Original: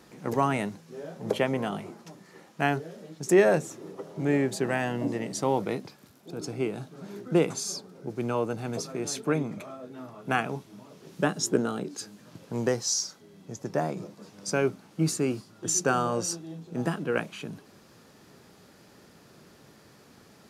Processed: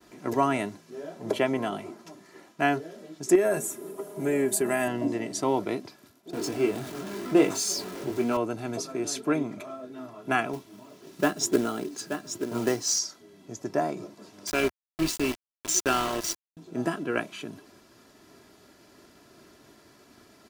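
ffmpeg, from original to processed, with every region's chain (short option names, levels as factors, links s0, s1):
-filter_complex "[0:a]asettb=1/sr,asplit=3[s0][s1][s2];[s0]atrim=end=3.354[s3];[s1]atrim=start=3.35:end=4.88,asetpts=PTS-STARTPTS,afade=t=in:d=0.004:c=qsin,afade=t=out:st=1.526:d=0.004:c=qsin,highshelf=f=7400:t=q:w=1.5:g=12.5,aecho=1:1:4.9:0.52,atrim=end_sample=67473,acompressor=threshold=0.0891:ratio=10:attack=3.2:release=140:knee=1:detection=peak[s4];[s2]atrim=start=4.876[s5];[s3][s4]acrossfade=d=0.004:c1=hsin:c2=qsin[s6];[s6][s5]acrossfade=d=0.004:c1=qsin:c2=hsin,asettb=1/sr,asplit=3[s7][s8][s9];[s7]atrim=end=6.334[s10];[s8]atrim=start=6.33:end=8.37,asetpts=PTS-STARTPTS,afade=t=in:d=0.004:c=qsin,afade=t=out:st=2.036:d=0.004:c=qsin,aeval=exprs='val(0)+0.5*0.0168*sgn(val(0))':c=same,highpass=81,asplit=2[s11][s12];[s12]adelay=21,volume=0.562[s13];[s11][s13]amix=inputs=2:normalize=0,atrim=end_sample=89964[s14];[s9]atrim=start=8.366[s15];[s10][s14]acrossfade=d=0.004:c1=hsin:c2=qsin[s16];[s16][s15]acrossfade=d=0.004:c1=qsin:c2=hsin,asettb=1/sr,asplit=3[s17][s18][s19];[s17]atrim=end=10.534[s20];[s18]atrim=start=10.53:end=12.99,asetpts=PTS-STARTPTS,afade=t=in:d=0.004:c=qsin,afade=t=out:st=2.456:d=0.004:c=qsin,highpass=f=57:p=1,aecho=1:1:879:0.376,atrim=end_sample=108486,acrusher=bits=4:mode=log:mix=0:aa=0.000001[s21];[s19]atrim=start=12.986[s22];[s20][s21]acrossfade=d=0.004:c1=hsin:c2=qsin[s23];[s23][s22]acrossfade=d=0.004:c1=qsin:c2=hsin,asettb=1/sr,asplit=3[s24][s25][s26];[s24]atrim=end=14.474[s27];[s25]atrim=start=14.47:end=16.57,asetpts=PTS-STARTPTS,afade=t=in:d=0.004:c=qsin,afade=t=out:st=2.096:d=0.004:c=qsin,equalizer=f=3100:t=o:w=1.1:g=11.5,aeval=exprs='val(0)*gte(abs(val(0)),0.0447)':c=same,tremolo=f=200:d=0.462[s28];[s26]atrim=start=16.566[s29];[s27][s28]acrossfade=d=0.004:c1=hsin:c2=qsin[s30];[s30][s29]acrossfade=d=0.004:c1=qsin:c2=hsin,equalizer=f=84:w=1.5:g=-3,agate=range=0.0224:threshold=0.00224:ratio=3:detection=peak,aecho=1:1:3:0.54"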